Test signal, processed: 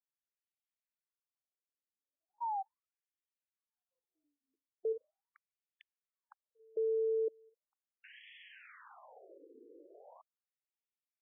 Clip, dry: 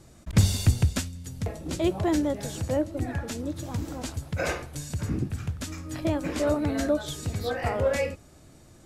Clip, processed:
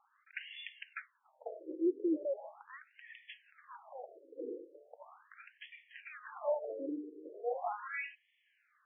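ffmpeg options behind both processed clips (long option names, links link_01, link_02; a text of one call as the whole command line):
ffmpeg -i in.wav -af "highpass=frequency=170:poles=1,bandreject=frequency=50:width_type=h:width=6,bandreject=frequency=100:width_type=h:width=6,bandreject=frequency=150:width_type=h:width=6,bandreject=frequency=200:width_type=h:width=6,bandreject=frequency=250:width_type=h:width=6,bandreject=frequency=300:width_type=h:width=6,afftfilt=real='re*between(b*sr/1024,360*pow(2500/360,0.5+0.5*sin(2*PI*0.39*pts/sr))/1.41,360*pow(2500/360,0.5+0.5*sin(2*PI*0.39*pts/sr))*1.41)':imag='im*between(b*sr/1024,360*pow(2500/360,0.5+0.5*sin(2*PI*0.39*pts/sr))/1.41,360*pow(2500/360,0.5+0.5*sin(2*PI*0.39*pts/sr))*1.41)':win_size=1024:overlap=0.75,volume=-4.5dB" out.wav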